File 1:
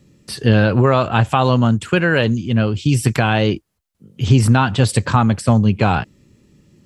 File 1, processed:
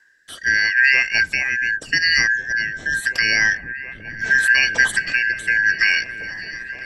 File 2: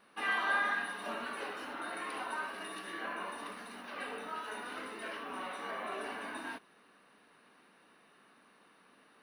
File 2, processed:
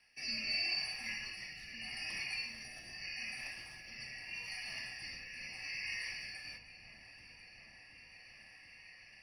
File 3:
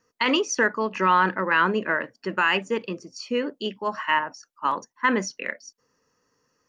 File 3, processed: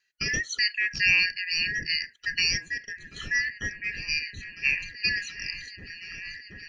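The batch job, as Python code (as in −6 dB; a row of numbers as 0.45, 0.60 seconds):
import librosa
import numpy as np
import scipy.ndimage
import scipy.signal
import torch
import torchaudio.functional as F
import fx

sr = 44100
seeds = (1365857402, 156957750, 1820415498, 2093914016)

y = fx.band_shuffle(x, sr, order='3142')
y = fx.rotary(y, sr, hz=0.8)
y = fx.echo_opening(y, sr, ms=726, hz=200, octaves=1, feedback_pct=70, wet_db=-3)
y = y * 10.0 ** (-1.0 / 20.0)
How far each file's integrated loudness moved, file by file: −1.0, −2.0, −2.0 LU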